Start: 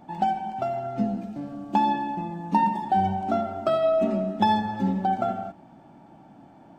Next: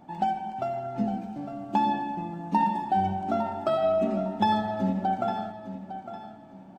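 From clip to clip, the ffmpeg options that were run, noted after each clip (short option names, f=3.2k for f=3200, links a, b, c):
-af "aecho=1:1:856|1712|2568:0.266|0.0798|0.0239,volume=-2.5dB"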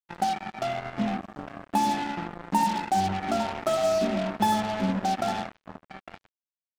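-af "acrusher=bits=4:mix=0:aa=0.5"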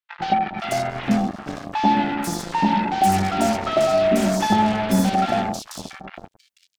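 -filter_complex "[0:a]acrossover=split=970|4200[a][b][c];[a]adelay=100[d];[c]adelay=490[e];[d][b][e]amix=inputs=3:normalize=0,volume=8.5dB"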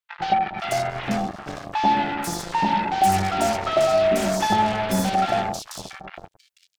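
-af "equalizer=f=240:t=o:w=0.66:g=-9.5"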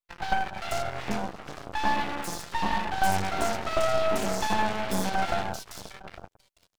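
-af "aeval=exprs='max(val(0),0)':c=same,volume=-2dB"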